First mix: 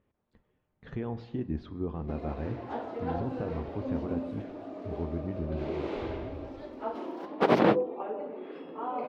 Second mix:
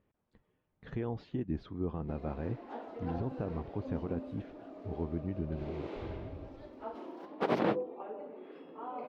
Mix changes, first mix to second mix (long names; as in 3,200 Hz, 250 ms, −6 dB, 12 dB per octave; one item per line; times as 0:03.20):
background −7.5 dB
reverb: off